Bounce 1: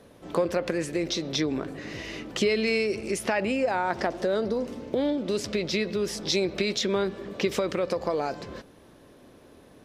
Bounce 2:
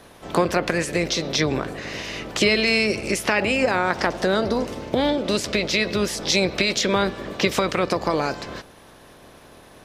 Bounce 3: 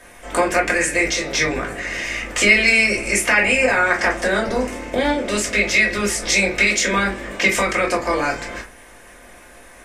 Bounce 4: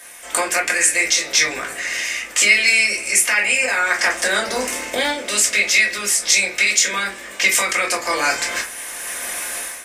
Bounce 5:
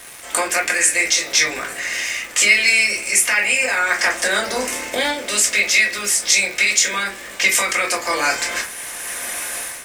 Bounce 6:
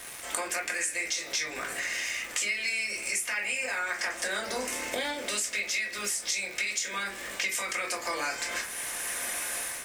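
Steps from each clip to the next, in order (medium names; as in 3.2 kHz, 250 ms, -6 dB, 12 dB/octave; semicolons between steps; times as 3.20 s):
spectral peaks clipped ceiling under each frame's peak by 12 dB; trim +5.5 dB
graphic EQ 125/1000/2000/4000/8000 Hz -11/-3/+10/-7/+11 dB; reverberation RT60 0.25 s, pre-delay 3 ms, DRR -2 dB; trim -3.5 dB
tilt EQ +4 dB/octave; level rider gain up to 14 dB; trim -1 dB
crackle 510 per s -27 dBFS
compression 4:1, threshold -26 dBFS, peak gain reduction 14.5 dB; trim -4 dB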